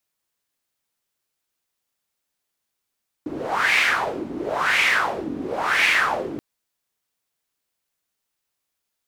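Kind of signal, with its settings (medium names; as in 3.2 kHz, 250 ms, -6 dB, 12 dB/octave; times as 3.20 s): wind-like swept noise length 3.13 s, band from 280 Hz, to 2.3 kHz, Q 4.4, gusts 3, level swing 12.5 dB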